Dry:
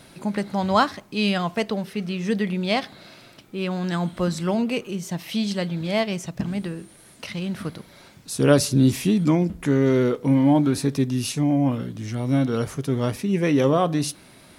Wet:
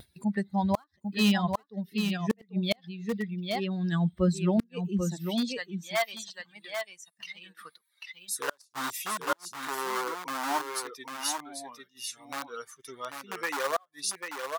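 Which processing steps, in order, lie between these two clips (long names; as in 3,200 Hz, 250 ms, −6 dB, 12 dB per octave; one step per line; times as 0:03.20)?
spectral dynamics exaggerated over time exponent 2
0:10.61–0:12.25: low-shelf EQ 420 Hz −7 dB
in parallel at −12 dB: wrap-around overflow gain 20 dB
on the sum: high-pass filter sweep 68 Hz → 1,100 Hz, 0:04.66–0:05.53
on a send: single-tap delay 794 ms −6.5 dB
on the sum: upward compression, threshold −40 dBFS
dynamic equaliser 2,500 Hz, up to −4 dB, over −43 dBFS, Q 1.7
gate with flip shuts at −17 dBFS, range −38 dB
pitch vibrato 1.7 Hz 41 cents
noise gate −53 dBFS, range −14 dB
level +2 dB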